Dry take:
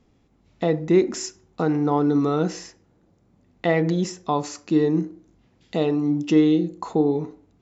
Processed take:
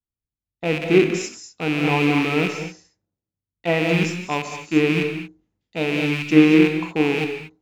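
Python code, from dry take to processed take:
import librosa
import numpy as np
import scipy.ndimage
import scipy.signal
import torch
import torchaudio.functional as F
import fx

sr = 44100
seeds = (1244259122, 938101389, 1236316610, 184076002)

y = fx.rattle_buzz(x, sr, strikes_db=-29.0, level_db=-14.0)
y = fx.rev_gated(y, sr, seeds[0], gate_ms=260, shape='rising', drr_db=3.0)
y = fx.band_widen(y, sr, depth_pct=100)
y = y * librosa.db_to_amplitude(-1.0)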